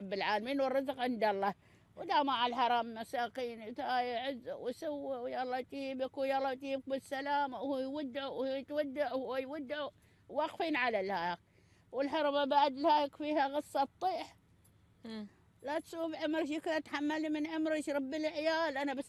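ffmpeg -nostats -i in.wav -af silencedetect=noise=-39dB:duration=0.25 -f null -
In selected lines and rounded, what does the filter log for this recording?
silence_start: 1.52
silence_end: 2.00 | silence_duration: 0.48
silence_start: 9.88
silence_end: 10.32 | silence_duration: 0.44
silence_start: 11.35
silence_end: 11.94 | silence_duration: 0.59
silence_start: 14.23
silence_end: 15.05 | silence_duration: 0.82
silence_start: 15.22
silence_end: 15.65 | silence_duration: 0.43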